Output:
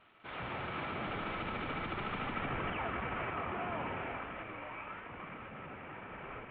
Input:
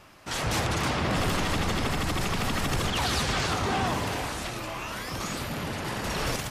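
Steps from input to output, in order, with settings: CVSD 16 kbps; Doppler pass-by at 2.45, 30 m/s, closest 7.4 m; low shelf 140 Hz -9.5 dB; small resonant body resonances 1300/2300 Hz, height 9 dB; reverse; compressor 8:1, threshold -44 dBFS, peak gain reduction 17.5 dB; reverse; gain +9 dB

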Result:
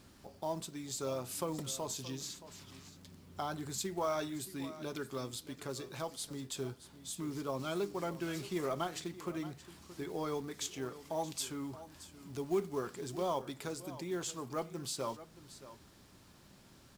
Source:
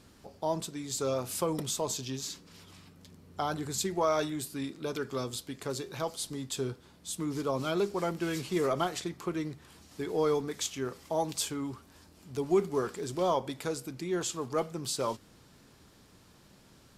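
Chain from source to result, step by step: notch 460 Hz, Q 12; in parallel at -0.5 dB: compressor 6:1, threshold -45 dBFS, peak gain reduction 21.5 dB; on the sum: companded quantiser 6-bit; echo 0.624 s -15 dB; gain -7.5 dB

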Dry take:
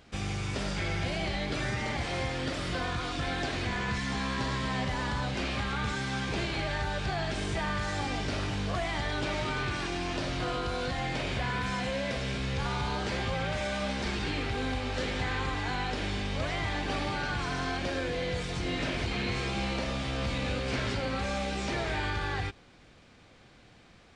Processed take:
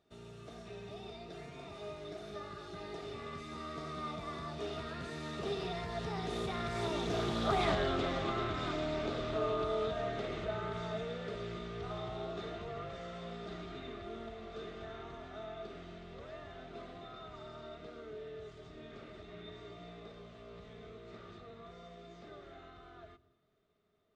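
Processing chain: Doppler pass-by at 7.69, 49 m/s, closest 6.4 m; bell 180 Hz +7 dB 0.57 oct; compressor 3:1, threshold -52 dBFS, peak gain reduction 17.5 dB; small resonant body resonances 410/640/1200/3600 Hz, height 17 dB, ringing for 55 ms; on a send at -23.5 dB: reverb RT60 1.0 s, pre-delay 99 ms; on the sum: Doppler distortion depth 0.2 ms; gain +13 dB

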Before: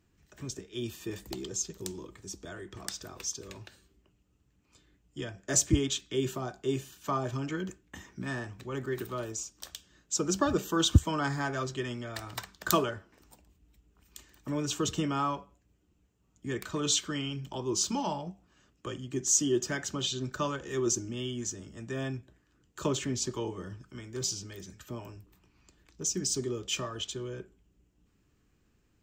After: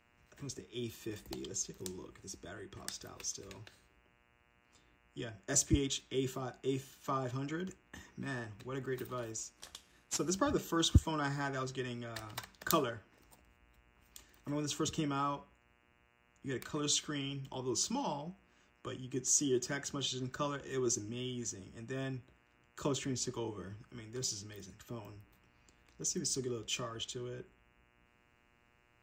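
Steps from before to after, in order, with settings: 9.57–10.3 CVSD 64 kbps; buzz 120 Hz, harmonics 24, -67 dBFS 0 dB/oct; gain -5 dB

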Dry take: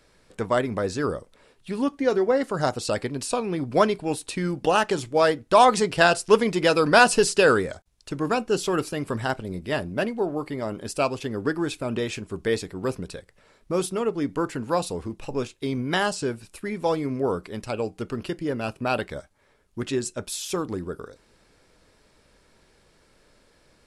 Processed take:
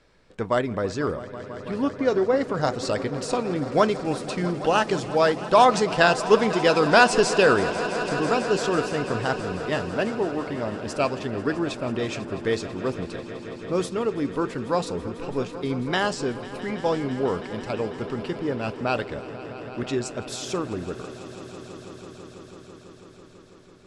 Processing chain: air absorption 84 m; swelling echo 0.165 s, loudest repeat 5, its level -17 dB; dynamic EQ 6800 Hz, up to +5 dB, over -45 dBFS, Q 1

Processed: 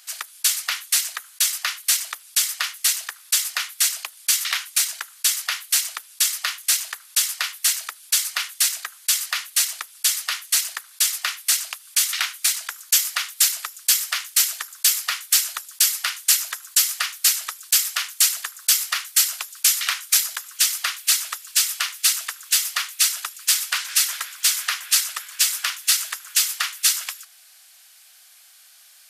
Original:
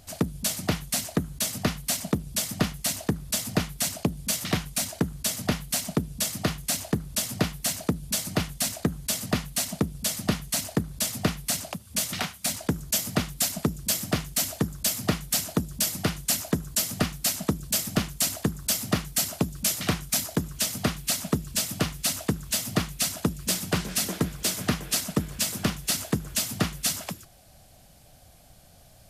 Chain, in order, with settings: HPF 1300 Hz 24 dB/oct; gain +8.5 dB

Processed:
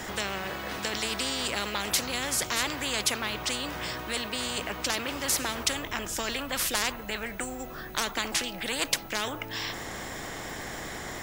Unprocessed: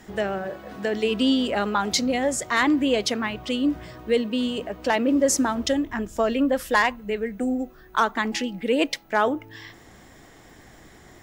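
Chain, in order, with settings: spectral compressor 4:1; gain +3 dB

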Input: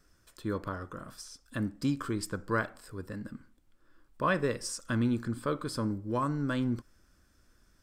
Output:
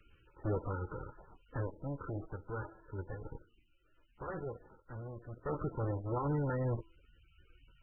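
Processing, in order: minimum comb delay 2.2 ms; LPF 1700 Hz 24 dB/oct; low shelf 270 Hz +4 dB; de-hum 332.4 Hz, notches 19; limiter -27 dBFS, peak gain reduction 9 dB; added harmonics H 2 -18 dB, 3 -35 dB, 6 -37 dB, 8 -22 dB, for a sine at -27 dBFS; added noise violet -50 dBFS; random-step tremolo 1.1 Hz, depth 75%; gain +1.5 dB; MP3 8 kbps 22050 Hz

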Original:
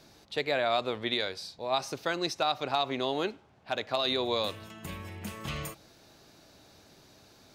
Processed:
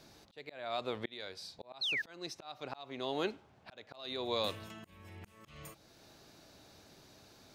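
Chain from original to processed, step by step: auto swell 0.588 s; painted sound fall, 1.81–2.02, 1600–4400 Hz -32 dBFS; gain -2 dB

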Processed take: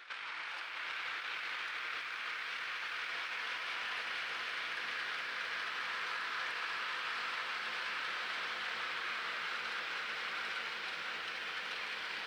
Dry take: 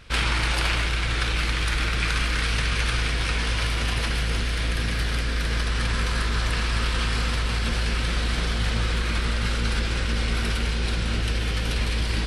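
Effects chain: HPF 1400 Hz 12 dB/oct; high shelf 2200 Hz -7.5 dB; negative-ratio compressor -36 dBFS, ratio -1; tape spacing loss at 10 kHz 22 dB; on a send: reverse echo 1.164 s -12 dB; on the sum: lo-fi delay 0.48 s, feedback 80%, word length 11-bit, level -9 dB

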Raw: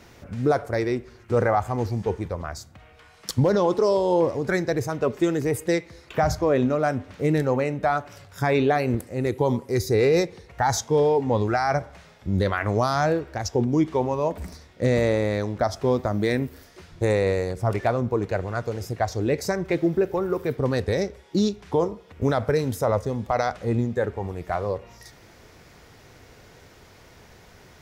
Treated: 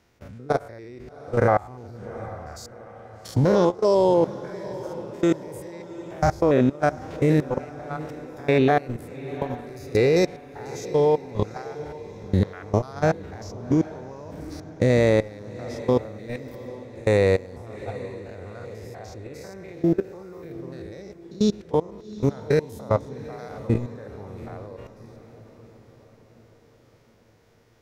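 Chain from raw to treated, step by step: stepped spectrum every 0.1 s; level quantiser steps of 23 dB; diffused feedback echo 0.773 s, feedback 53%, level -15.5 dB; gain +5.5 dB

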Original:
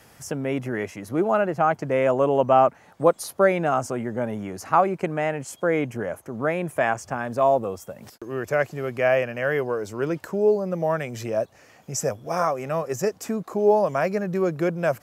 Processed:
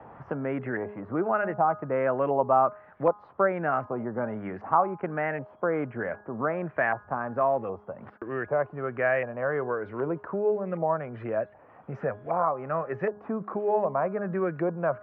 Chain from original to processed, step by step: LFO low-pass saw up 1.3 Hz 880–2000 Hz; LPF 3300 Hz 24 dB/oct; de-hum 207.3 Hz, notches 8; three-band squash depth 40%; gain -6.5 dB

